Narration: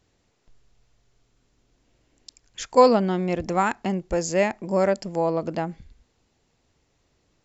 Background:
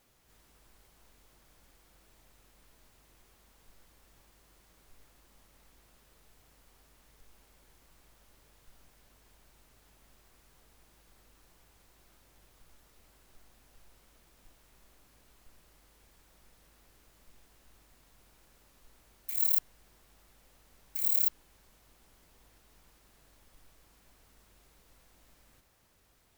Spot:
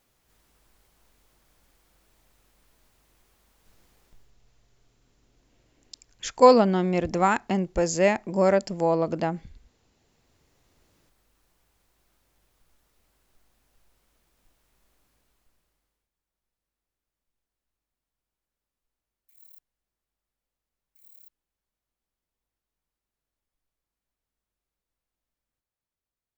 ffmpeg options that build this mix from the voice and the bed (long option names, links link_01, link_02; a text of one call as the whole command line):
ffmpeg -i stem1.wav -i stem2.wav -filter_complex "[0:a]adelay=3650,volume=0.5dB[link_01];[1:a]volume=12dB,afade=type=out:start_time=4:duration=0.32:silence=0.125893,afade=type=in:start_time=9.95:duration=1.02:silence=0.211349,afade=type=out:start_time=15.05:duration=1.05:silence=0.1[link_02];[link_01][link_02]amix=inputs=2:normalize=0" out.wav